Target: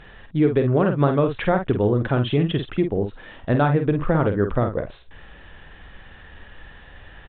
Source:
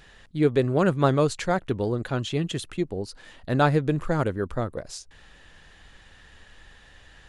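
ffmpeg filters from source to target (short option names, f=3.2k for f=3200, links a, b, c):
-filter_complex "[0:a]acompressor=threshold=-23dB:ratio=6,aresample=8000,aresample=44100,aemphasis=mode=reproduction:type=75kf,asplit=2[a][b];[b]adelay=49,volume=-7dB[c];[a][c]amix=inputs=2:normalize=0,volume=8dB"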